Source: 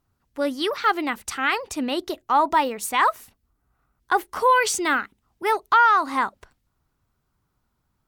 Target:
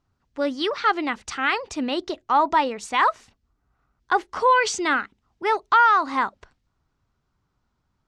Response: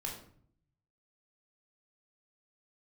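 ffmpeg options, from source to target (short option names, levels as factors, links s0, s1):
-af "lowpass=f=6800:w=0.5412,lowpass=f=6800:w=1.3066"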